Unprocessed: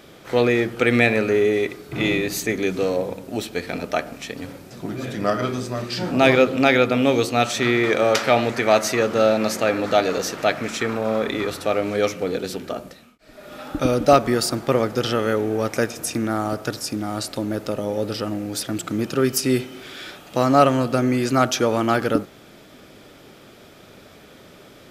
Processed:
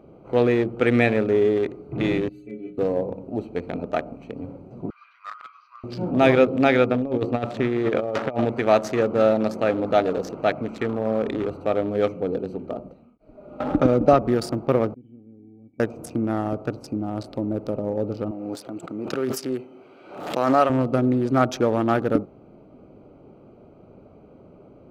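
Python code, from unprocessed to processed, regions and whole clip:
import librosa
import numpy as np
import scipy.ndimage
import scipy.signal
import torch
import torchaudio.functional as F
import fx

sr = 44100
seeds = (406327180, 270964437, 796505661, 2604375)

y = fx.chain(x, sr, fx.peak_eq(hz=5500.0, db=10.0, octaves=2.0),
    fx.fixed_phaser(hz=2400.0, stages=4),
    fx.stiff_resonator(f0_hz=63.0, decay_s=0.65, stiffness=0.03), at=(2.29, 2.78))
y = fx.chain(y, sr, fx.cheby1_bandpass(low_hz=1100.0, high_hz=5600.0, order=5),
    fx.band_squash(depth_pct=40), at=(4.9, 5.84))
y = fx.chain(y, sr, fx.lowpass(hz=2500.0, slope=6),
    fx.over_compress(threshold_db=-21.0, ratio=-0.5), at=(6.92, 8.45))
y = fx.chain(y, sr, fx.lowpass(hz=3900.0, slope=6),
    fx.band_squash(depth_pct=70), at=(13.6, 14.22))
y = fx.chain(y, sr, fx.formant_cascade(vowel='i'),
    fx.low_shelf(hz=200.0, db=11.5),
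    fx.comb_fb(f0_hz=750.0, decay_s=0.18, harmonics='odd', damping=0.0, mix_pct=90), at=(14.94, 15.8))
y = fx.chain(y, sr, fx.highpass(hz=640.0, slope=6),
    fx.pre_swell(db_per_s=37.0), at=(18.31, 20.7))
y = fx.wiener(y, sr, points=25)
y = fx.high_shelf(y, sr, hz=2700.0, db=-11.0)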